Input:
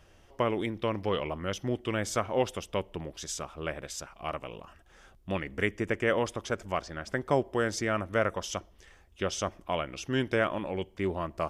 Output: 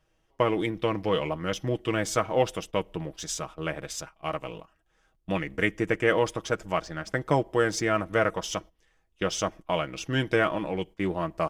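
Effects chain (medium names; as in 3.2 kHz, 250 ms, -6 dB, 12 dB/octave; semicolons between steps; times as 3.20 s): gate -44 dBFS, range -13 dB; comb 6.3 ms, depth 52%; in parallel at -8 dB: hysteresis with a dead band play -38 dBFS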